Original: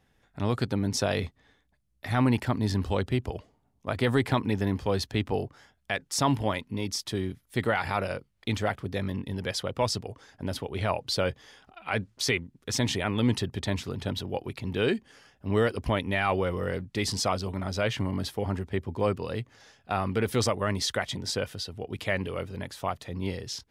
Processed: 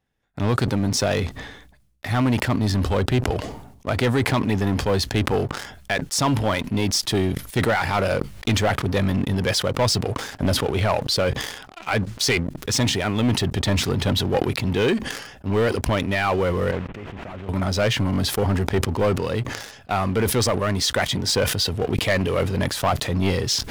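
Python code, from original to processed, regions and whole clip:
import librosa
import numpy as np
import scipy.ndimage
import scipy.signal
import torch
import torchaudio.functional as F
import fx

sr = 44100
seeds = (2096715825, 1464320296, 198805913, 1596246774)

y = fx.chain(x, sr, fx.delta_mod(bps=16000, step_db=-40.5),
    fx.level_steps(step_db=22), at=(16.71, 17.49))
y = fx.rider(y, sr, range_db=10, speed_s=0.5)
y = fx.leveller(y, sr, passes=3)
y = fx.sustainer(y, sr, db_per_s=61.0)
y = y * 10.0 ** (-2.0 / 20.0)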